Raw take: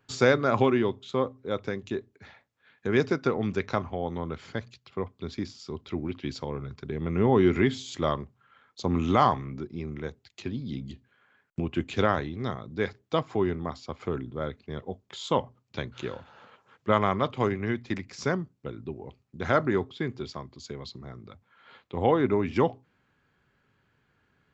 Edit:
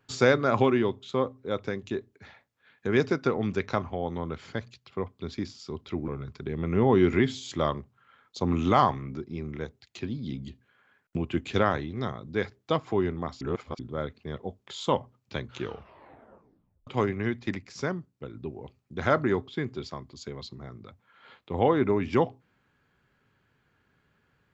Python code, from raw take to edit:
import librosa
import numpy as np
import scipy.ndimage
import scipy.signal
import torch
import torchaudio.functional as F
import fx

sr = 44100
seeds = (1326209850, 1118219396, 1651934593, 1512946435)

y = fx.edit(x, sr, fx.cut(start_s=6.08, length_s=0.43),
    fx.reverse_span(start_s=13.84, length_s=0.38),
    fx.tape_stop(start_s=16.0, length_s=1.3),
    fx.clip_gain(start_s=18.03, length_s=0.74, db=-3.0), tone=tone)